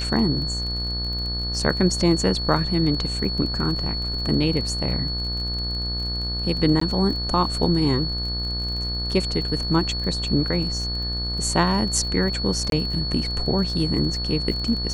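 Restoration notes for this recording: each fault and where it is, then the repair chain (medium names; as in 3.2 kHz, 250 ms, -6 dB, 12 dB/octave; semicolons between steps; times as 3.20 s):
buzz 60 Hz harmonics 32 -29 dBFS
crackle 32 per s -30 dBFS
whine 4.4 kHz -27 dBFS
6.80–6.81 s: dropout 14 ms
12.70–12.72 s: dropout 22 ms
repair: de-click; de-hum 60 Hz, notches 32; band-stop 4.4 kHz, Q 30; interpolate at 6.80 s, 14 ms; interpolate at 12.70 s, 22 ms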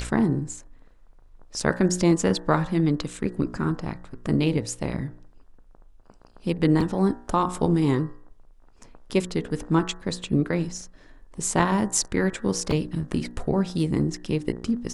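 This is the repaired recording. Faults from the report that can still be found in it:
nothing left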